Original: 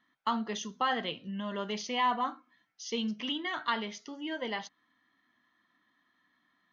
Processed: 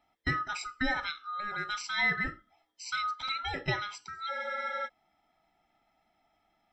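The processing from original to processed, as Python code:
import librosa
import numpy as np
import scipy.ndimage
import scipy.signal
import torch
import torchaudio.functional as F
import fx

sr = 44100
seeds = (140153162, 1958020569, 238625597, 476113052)

y = fx.band_swap(x, sr, width_hz=1000)
y = fx.spec_freeze(y, sr, seeds[0], at_s=4.31, hold_s=0.56)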